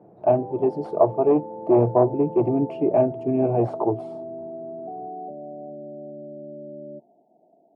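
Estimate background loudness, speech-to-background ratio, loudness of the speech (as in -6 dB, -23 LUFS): -36.5 LUFS, 14.5 dB, -22.0 LUFS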